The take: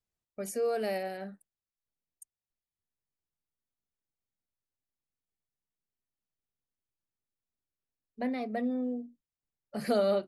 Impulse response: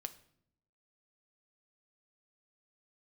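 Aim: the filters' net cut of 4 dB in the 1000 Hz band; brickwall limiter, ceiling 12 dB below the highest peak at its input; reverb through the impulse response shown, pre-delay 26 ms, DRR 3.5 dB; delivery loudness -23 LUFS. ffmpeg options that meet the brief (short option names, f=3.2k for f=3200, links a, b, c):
-filter_complex "[0:a]equalizer=f=1k:t=o:g=-7,alimiter=level_in=8dB:limit=-24dB:level=0:latency=1,volume=-8dB,asplit=2[a][b];[1:a]atrim=start_sample=2205,adelay=26[c];[b][c]afir=irnorm=-1:irlink=0,volume=-0.5dB[d];[a][d]amix=inputs=2:normalize=0,volume=16dB"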